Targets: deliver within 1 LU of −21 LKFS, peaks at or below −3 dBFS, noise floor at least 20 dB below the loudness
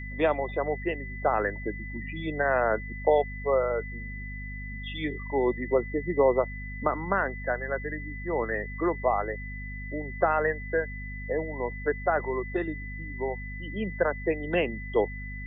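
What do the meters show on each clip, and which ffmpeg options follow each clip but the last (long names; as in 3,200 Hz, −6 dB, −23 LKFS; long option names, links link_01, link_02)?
mains hum 50 Hz; hum harmonics up to 250 Hz; level of the hum −36 dBFS; interfering tone 2,000 Hz; level of the tone −40 dBFS; integrated loudness −29.0 LKFS; sample peak −9.5 dBFS; target loudness −21.0 LKFS
→ -af "bandreject=frequency=50:width_type=h:width=6,bandreject=frequency=100:width_type=h:width=6,bandreject=frequency=150:width_type=h:width=6,bandreject=frequency=200:width_type=h:width=6,bandreject=frequency=250:width_type=h:width=6"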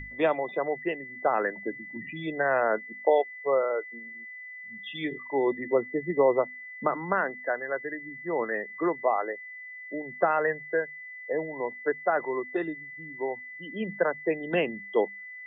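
mains hum none found; interfering tone 2,000 Hz; level of the tone −40 dBFS
→ -af "bandreject=frequency=2000:width=30"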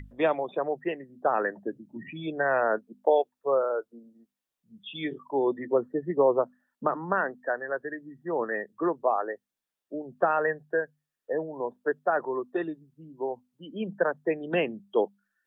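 interfering tone none found; integrated loudness −29.0 LKFS; sample peak −9.5 dBFS; target loudness −21.0 LKFS
→ -af "volume=8dB,alimiter=limit=-3dB:level=0:latency=1"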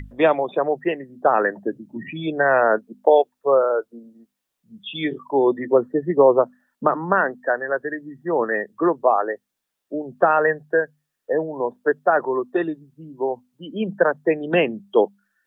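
integrated loudness −21.0 LKFS; sample peak −3.0 dBFS; background noise floor −80 dBFS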